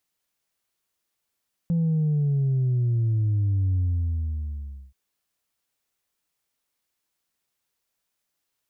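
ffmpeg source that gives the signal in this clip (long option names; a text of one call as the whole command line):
ffmpeg -f lavfi -i "aevalsrc='0.1*clip((3.23-t)/1.17,0,1)*tanh(1.12*sin(2*PI*170*3.23/log(65/170)*(exp(log(65/170)*t/3.23)-1)))/tanh(1.12)':duration=3.23:sample_rate=44100" out.wav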